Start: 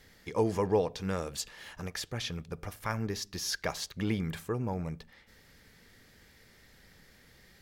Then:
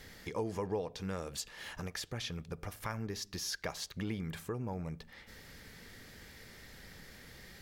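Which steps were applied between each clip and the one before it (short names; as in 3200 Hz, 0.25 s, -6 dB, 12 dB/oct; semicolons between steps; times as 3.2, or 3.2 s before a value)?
compressor 2:1, threshold -51 dBFS, peak gain reduction 16 dB; gain +6 dB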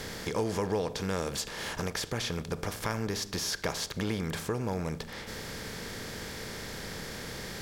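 per-bin compression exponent 0.6; gain +3.5 dB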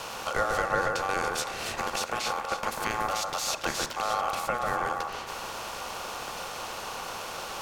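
ring modulator 970 Hz; echo with dull and thin repeats by turns 0.142 s, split 1800 Hz, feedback 53%, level -3 dB; gain +4.5 dB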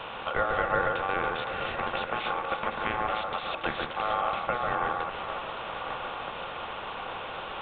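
regenerating reverse delay 0.599 s, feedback 66%, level -11 dB; downsampling 8000 Hz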